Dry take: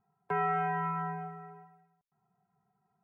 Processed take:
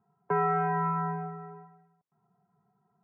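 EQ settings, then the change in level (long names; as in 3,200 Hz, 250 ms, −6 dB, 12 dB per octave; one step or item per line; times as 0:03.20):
high-pass filter 110 Hz
low-pass filter 1,300 Hz 12 dB per octave
notch filter 770 Hz, Q 12
+6.5 dB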